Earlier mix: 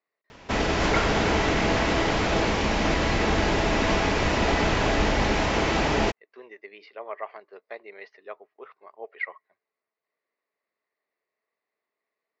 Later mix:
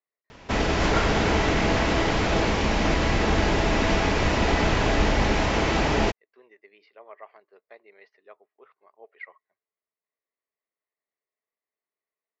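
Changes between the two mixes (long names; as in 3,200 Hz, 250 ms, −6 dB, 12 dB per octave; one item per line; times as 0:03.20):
speech −10.0 dB
master: add low-shelf EQ 150 Hz +3.5 dB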